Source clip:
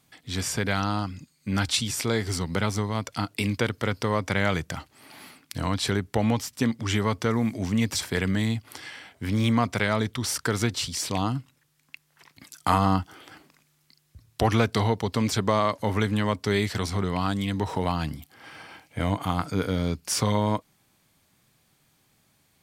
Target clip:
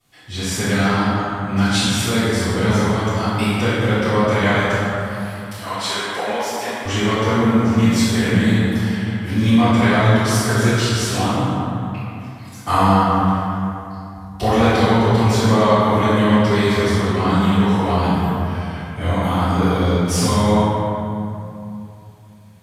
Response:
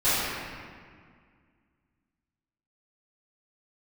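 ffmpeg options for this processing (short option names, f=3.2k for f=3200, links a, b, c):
-filter_complex "[0:a]asettb=1/sr,asplit=3[a][b][c];[a]atrim=end=4.534[d];[b]atrim=start=4.53:end=6.85,asetpts=PTS-STARTPTS,afade=t=in:d=0.004:c=qsin,afade=t=out:st=2.316:d=0.004:c=qsin,highpass=580[e];[c]atrim=start=6.846[f];[d][e]acrossfade=d=0.004:c1=hsin:c2=qsin[g];[g][f]acrossfade=d=0.004:c1=qsin:c2=hsin[h];[1:a]atrim=start_sample=2205,asetrate=30429,aresample=44100[i];[h][i]afir=irnorm=-1:irlink=0,volume=-10dB"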